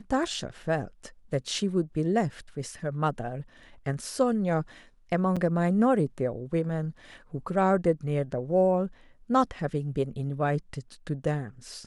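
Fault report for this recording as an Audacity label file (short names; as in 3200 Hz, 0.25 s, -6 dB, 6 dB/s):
5.360000	5.370000	gap 5.8 ms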